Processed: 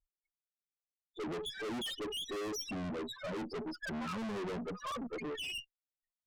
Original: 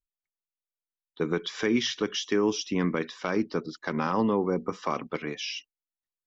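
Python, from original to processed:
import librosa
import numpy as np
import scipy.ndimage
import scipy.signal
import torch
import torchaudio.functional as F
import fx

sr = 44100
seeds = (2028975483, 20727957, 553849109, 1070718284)

y = fx.spec_topn(x, sr, count=4)
y = fx.tube_stage(y, sr, drive_db=46.0, bias=0.4)
y = F.gain(torch.from_numpy(y), 8.5).numpy()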